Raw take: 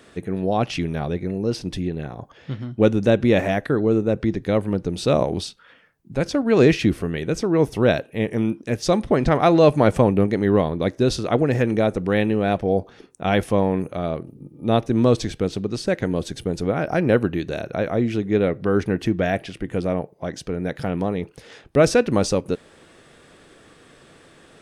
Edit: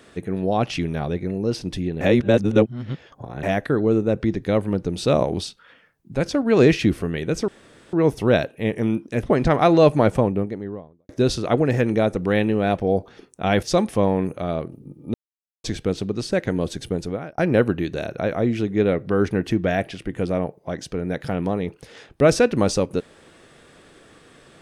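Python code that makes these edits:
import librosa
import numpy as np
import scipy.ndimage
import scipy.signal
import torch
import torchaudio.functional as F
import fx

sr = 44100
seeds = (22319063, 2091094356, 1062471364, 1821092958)

y = fx.studio_fade_out(x, sr, start_s=9.61, length_s=1.29)
y = fx.edit(y, sr, fx.reverse_span(start_s=2.01, length_s=1.42),
    fx.insert_room_tone(at_s=7.48, length_s=0.45),
    fx.move(start_s=8.78, length_s=0.26, to_s=13.44),
    fx.silence(start_s=14.69, length_s=0.5),
    fx.fade_out_span(start_s=16.48, length_s=0.45), tone=tone)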